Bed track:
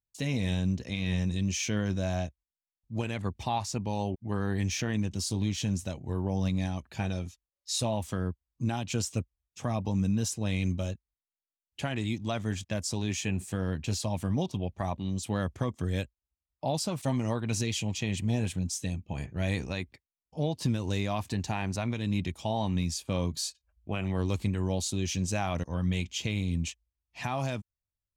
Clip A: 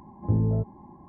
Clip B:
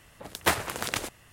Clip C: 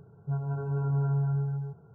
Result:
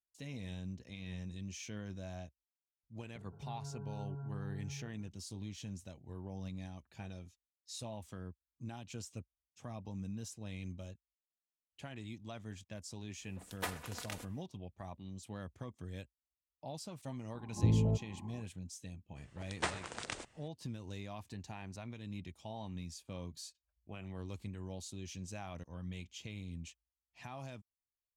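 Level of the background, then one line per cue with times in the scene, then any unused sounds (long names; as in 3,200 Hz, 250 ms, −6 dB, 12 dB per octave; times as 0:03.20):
bed track −15 dB
0:03.15: mix in C −16 dB + multiband upward and downward compressor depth 70%
0:13.16: mix in B −16 dB, fades 0.10 s + comb filter 4.1 ms, depth 47%
0:17.34: mix in A −5.5 dB
0:19.16: mix in B −11.5 dB + Butterworth low-pass 9,200 Hz 72 dB per octave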